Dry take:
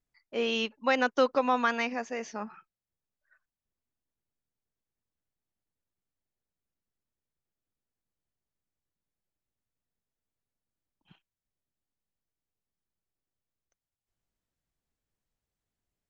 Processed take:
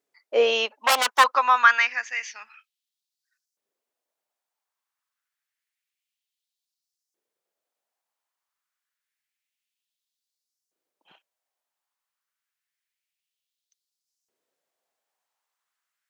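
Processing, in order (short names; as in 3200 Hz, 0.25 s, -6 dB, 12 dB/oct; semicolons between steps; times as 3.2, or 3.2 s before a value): 0.84–1.24 self-modulated delay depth 0.57 ms; LFO high-pass saw up 0.28 Hz 390–5900 Hz; gain +6.5 dB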